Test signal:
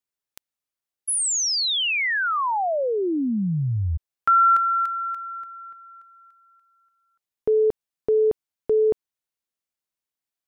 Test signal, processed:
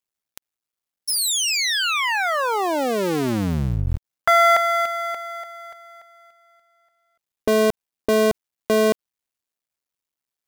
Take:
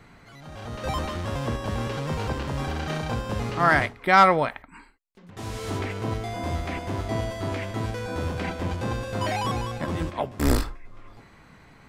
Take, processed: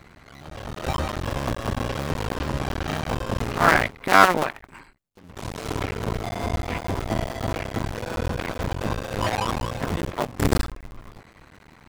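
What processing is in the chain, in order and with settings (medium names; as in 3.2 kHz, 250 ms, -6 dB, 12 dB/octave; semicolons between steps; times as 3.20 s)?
cycle switcher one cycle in 2, muted; trim +4.5 dB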